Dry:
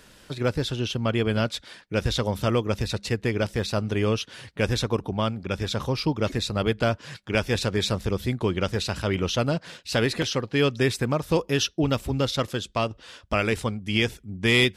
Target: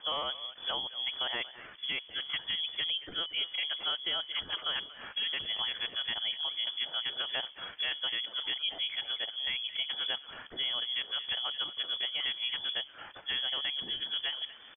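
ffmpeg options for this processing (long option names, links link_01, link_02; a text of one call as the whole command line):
ffmpeg -i in.wav -filter_complex "[0:a]areverse,equalizer=frequency=560:width=1.7:gain=-7,bandreject=frequency=60:width_type=h:width=6,bandreject=frequency=120:width_type=h:width=6,bandreject=frequency=180:width_type=h:width=6,bandreject=frequency=240:width_type=h:width=6,bandreject=frequency=300:width_type=h:width=6,bandreject=frequency=360:width_type=h:width=6,bandreject=frequency=420:width_type=h:width=6,bandreject=frequency=480:width_type=h:width=6,acompressor=threshold=-37dB:ratio=3,aresample=11025,aeval=exprs='val(0)*gte(abs(val(0)),0.0015)':channel_layout=same,aresample=44100,asplit=2[link_01][link_02];[link_02]adelay=230,highpass=300,lowpass=3400,asoftclip=type=hard:threshold=-31dB,volume=-14dB[link_03];[link_01][link_03]amix=inputs=2:normalize=0,asetrate=52444,aresample=44100,atempo=0.840896,lowpass=frequency=3000:width_type=q:width=0.5098,lowpass=frequency=3000:width_type=q:width=0.6013,lowpass=frequency=3000:width_type=q:width=0.9,lowpass=frequency=3000:width_type=q:width=2.563,afreqshift=-3500,volume=2.5dB" out.wav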